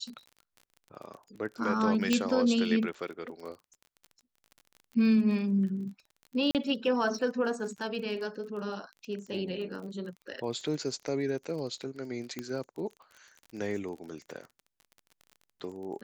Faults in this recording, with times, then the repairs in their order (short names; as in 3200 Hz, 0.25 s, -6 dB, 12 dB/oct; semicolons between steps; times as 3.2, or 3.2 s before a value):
crackle 29/s -40 dBFS
2.13 pop -12 dBFS
6.51–6.55 gap 38 ms
12.39 pop -21 dBFS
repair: de-click; interpolate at 6.51, 38 ms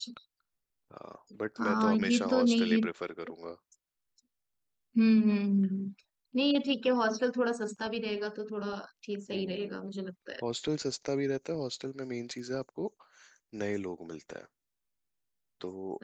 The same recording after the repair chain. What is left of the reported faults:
12.39 pop